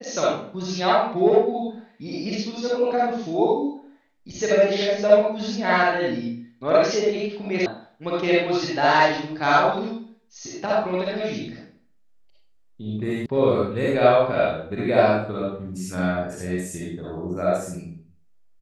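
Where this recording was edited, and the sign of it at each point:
7.66 s: sound stops dead
13.26 s: sound stops dead

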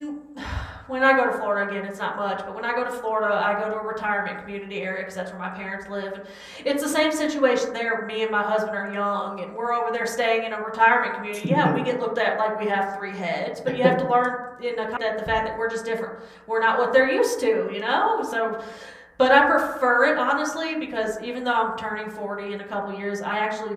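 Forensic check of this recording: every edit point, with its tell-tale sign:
14.97 s: sound stops dead

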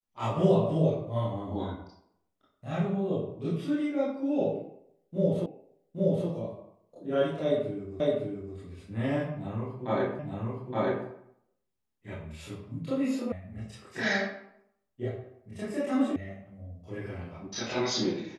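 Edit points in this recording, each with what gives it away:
5.46 s: repeat of the last 0.82 s
8.00 s: repeat of the last 0.56 s
10.19 s: repeat of the last 0.87 s
13.32 s: sound stops dead
16.16 s: sound stops dead

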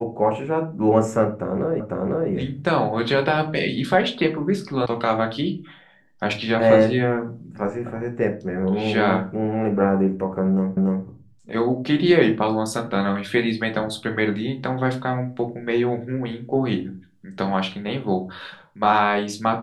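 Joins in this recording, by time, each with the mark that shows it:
1.80 s: repeat of the last 0.5 s
4.86 s: sound stops dead
10.77 s: repeat of the last 0.29 s

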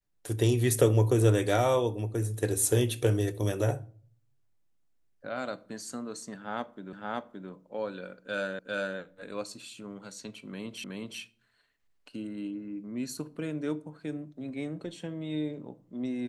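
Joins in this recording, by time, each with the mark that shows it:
6.93 s: repeat of the last 0.57 s
8.59 s: repeat of the last 0.4 s
10.84 s: repeat of the last 0.37 s

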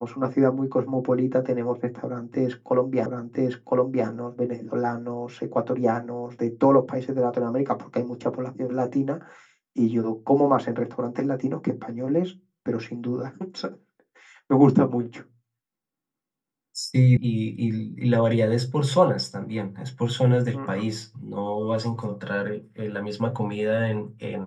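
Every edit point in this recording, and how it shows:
3.06 s: repeat of the last 1.01 s
17.17 s: sound stops dead

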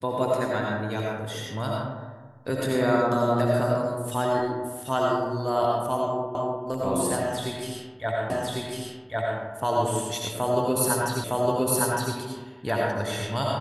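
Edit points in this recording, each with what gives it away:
6.35 s: repeat of the last 0.3 s
8.30 s: repeat of the last 1.1 s
11.24 s: repeat of the last 0.91 s

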